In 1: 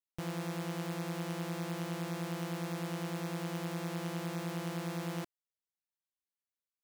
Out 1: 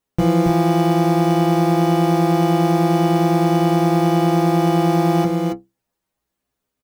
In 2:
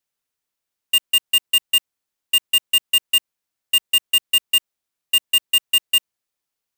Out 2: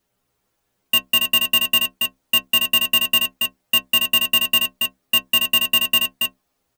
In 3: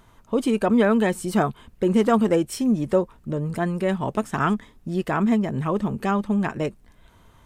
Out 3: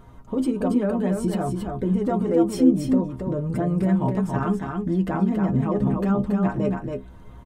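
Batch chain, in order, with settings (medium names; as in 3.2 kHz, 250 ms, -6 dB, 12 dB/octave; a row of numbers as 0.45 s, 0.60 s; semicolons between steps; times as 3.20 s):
tilt shelf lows +7.5 dB, about 1.1 kHz; compression 2:1, threshold -18 dBFS; peak limiter -17.5 dBFS; inharmonic resonator 61 Hz, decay 0.26 s, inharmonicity 0.008; on a send: delay 278 ms -4.5 dB; on the sum: peak normalisation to -6 dBFS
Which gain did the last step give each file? +25.0 dB, +20.5 dB, +9.5 dB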